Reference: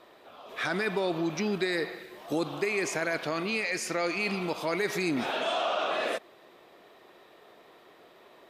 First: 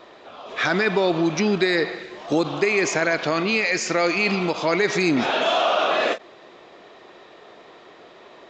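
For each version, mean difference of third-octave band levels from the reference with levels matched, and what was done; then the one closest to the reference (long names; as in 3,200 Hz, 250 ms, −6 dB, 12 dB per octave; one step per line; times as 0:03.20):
2.0 dB: downsampling to 16,000 Hz
every ending faded ahead of time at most 330 dB per second
level +9 dB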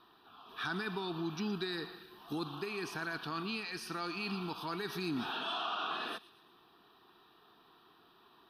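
4.0 dB: phaser with its sweep stopped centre 2,100 Hz, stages 6
on a send: delay with a high-pass on its return 117 ms, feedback 48%, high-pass 3,100 Hz, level −15.5 dB
on the sum: level −3.5 dB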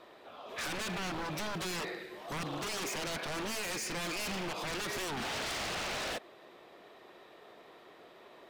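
8.0 dB: high-shelf EQ 11,000 Hz −7.5 dB
wave folding −32 dBFS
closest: first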